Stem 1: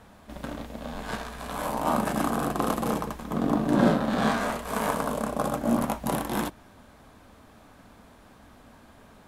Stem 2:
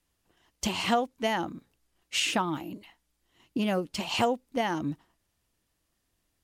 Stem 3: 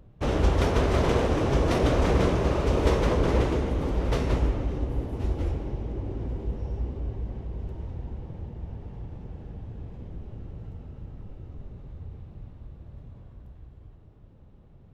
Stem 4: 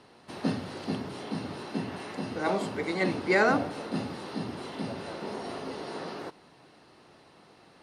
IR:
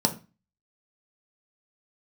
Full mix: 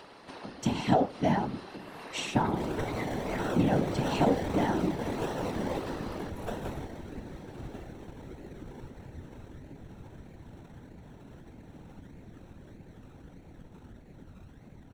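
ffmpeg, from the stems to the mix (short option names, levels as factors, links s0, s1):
-filter_complex "[0:a]highshelf=f=11000:g=11,adelay=300,volume=0.158[s0];[1:a]volume=0.75,asplit=2[s1][s2];[s2]volume=0.335[s3];[2:a]crystalizer=i=7.5:c=0,acrusher=samples=27:mix=1:aa=0.000001:lfo=1:lforange=16.2:lforate=1.6,adelay=2350,volume=0.316,asplit=2[s4][s5];[s5]volume=0.188[s6];[3:a]acompressor=threshold=0.0282:ratio=6,highpass=f=360:p=1,volume=1.33[s7];[4:a]atrim=start_sample=2205[s8];[s3][s6]amix=inputs=2:normalize=0[s9];[s9][s8]afir=irnorm=-1:irlink=0[s10];[s0][s1][s4][s7][s10]amix=inputs=5:normalize=0,highshelf=f=6700:g=-9,acompressor=mode=upward:threshold=0.0178:ratio=2.5,afftfilt=real='hypot(re,im)*cos(2*PI*random(0))':imag='hypot(re,im)*sin(2*PI*random(1))':win_size=512:overlap=0.75"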